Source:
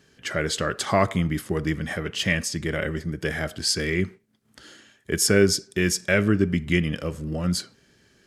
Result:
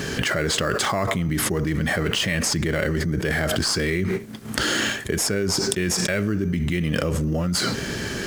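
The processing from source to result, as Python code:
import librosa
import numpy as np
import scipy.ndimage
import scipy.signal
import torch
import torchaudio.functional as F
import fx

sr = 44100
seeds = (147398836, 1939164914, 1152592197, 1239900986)

p1 = fx.sample_hold(x, sr, seeds[0], rate_hz=6100.0, jitter_pct=0)
p2 = x + (p1 * 10.0 ** (-11.0 / 20.0))
p3 = fx.env_flatten(p2, sr, amount_pct=100)
y = p3 * 10.0 ** (-10.5 / 20.0)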